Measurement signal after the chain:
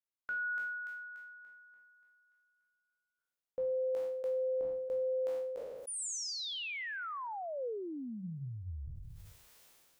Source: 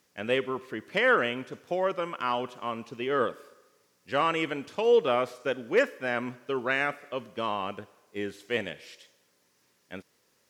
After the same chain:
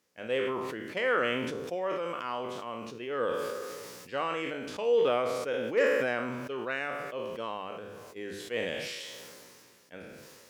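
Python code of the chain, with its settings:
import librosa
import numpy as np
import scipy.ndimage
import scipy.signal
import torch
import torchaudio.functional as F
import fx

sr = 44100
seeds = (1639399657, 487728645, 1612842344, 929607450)

y = fx.spec_trails(x, sr, decay_s=0.5)
y = fx.peak_eq(y, sr, hz=500.0, db=4.5, octaves=0.42)
y = fx.hum_notches(y, sr, base_hz=50, count=4)
y = fx.sustainer(y, sr, db_per_s=25.0)
y = y * 10.0 ** (-8.5 / 20.0)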